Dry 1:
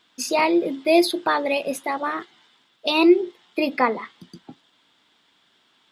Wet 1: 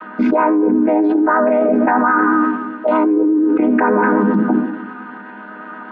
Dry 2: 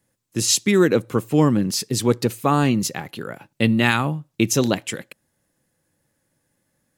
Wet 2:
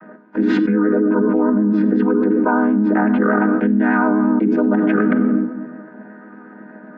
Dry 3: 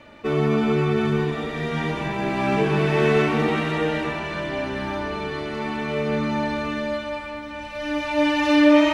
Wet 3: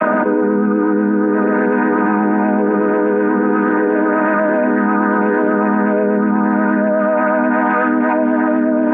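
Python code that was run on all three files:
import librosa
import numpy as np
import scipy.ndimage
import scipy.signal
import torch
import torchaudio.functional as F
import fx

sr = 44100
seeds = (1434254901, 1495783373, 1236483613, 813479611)

y = fx.chord_vocoder(x, sr, chord='minor triad', root=56)
y = scipy.signal.sosfilt(scipy.signal.butter(2, 160.0, 'highpass', fs=sr, output='sos'), y)
y = fx.hum_notches(y, sr, base_hz=60, count=7)
y = fx.dynamic_eq(y, sr, hz=380.0, q=1.8, threshold_db=-34.0, ratio=4.0, max_db=4)
y = fx.ladder_lowpass(y, sr, hz=1500.0, resonance_pct=65)
y = fx.room_shoebox(y, sr, seeds[0], volume_m3=3900.0, walls='furnished', distance_m=1.1)
y = fx.vibrato(y, sr, rate_hz=8.2, depth_cents=30.0)
y = fx.env_flatten(y, sr, amount_pct=100)
y = F.gain(torch.from_numpy(y), 6.0).numpy()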